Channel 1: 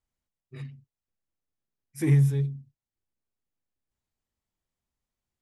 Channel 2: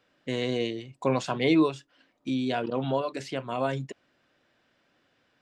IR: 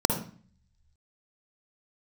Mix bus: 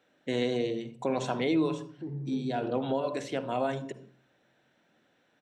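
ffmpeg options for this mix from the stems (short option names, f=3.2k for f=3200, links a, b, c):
-filter_complex "[0:a]lowpass=f=1.1k:w=0.5412,lowpass=f=1.1k:w=1.3066,alimiter=limit=-23.5dB:level=0:latency=1,volume=-9.5dB,asplit=4[a][b][c][d];[b]volume=-18dB[e];[c]volume=-10.5dB[f];[1:a]volume=-2.5dB,asplit=2[g][h];[h]volume=-17dB[i];[d]apad=whole_len=238812[j];[g][j]sidechaincompress=threshold=-50dB:ratio=8:attack=16:release=260[k];[2:a]atrim=start_sample=2205[l];[e][i]amix=inputs=2:normalize=0[m];[m][l]afir=irnorm=-1:irlink=0[n];[f]aecho=0:1:184:1[o];[a][k][n][o]amix=inputs=4:normalize=0,lowshelf=f=230:g=-5,alimiter=limit=-18.5dB:level=0:latency=1:release=174"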